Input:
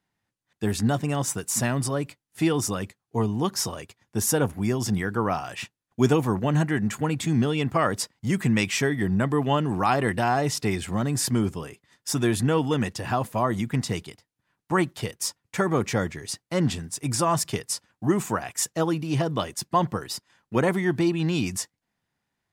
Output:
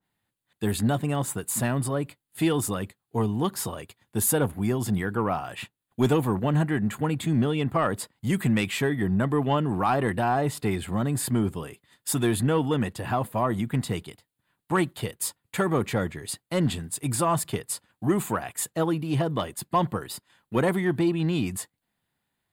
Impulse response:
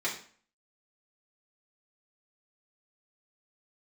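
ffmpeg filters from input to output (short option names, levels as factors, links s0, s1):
-af "aexciter=amount=1.1:drive=4:freq=3100,asoftclip=type=tanh:threshold=0.251,adynamicequalizer=threshold=0.00708:dfrequency=2200:dqfactor=0.7:tfrequency=2200:tqfactor=0.7:attack=5:release=100:ratio=0.375:range=4:mode=cutabove:tftype=highshelf"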